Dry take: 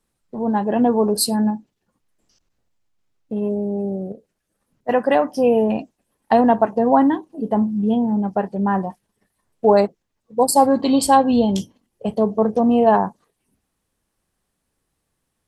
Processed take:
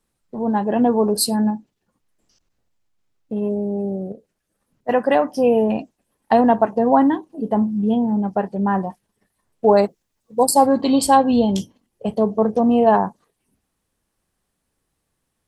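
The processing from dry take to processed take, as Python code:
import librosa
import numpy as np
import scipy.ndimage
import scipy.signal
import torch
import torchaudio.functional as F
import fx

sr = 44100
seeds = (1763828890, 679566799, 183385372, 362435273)

y = fx.high_shelf(x, sr, hz=4700.0, db=9.0, at=(9.83, 10.49))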